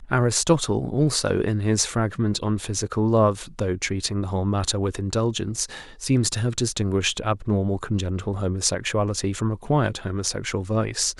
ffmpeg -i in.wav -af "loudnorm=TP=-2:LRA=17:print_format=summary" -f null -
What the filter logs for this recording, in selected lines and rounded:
Input Integrated:    -23.9 LUFS
Input True Peak:      -5.2 dBTP
Input LRA:             1.7 LU
Input Threshold:     -33.9 LUFS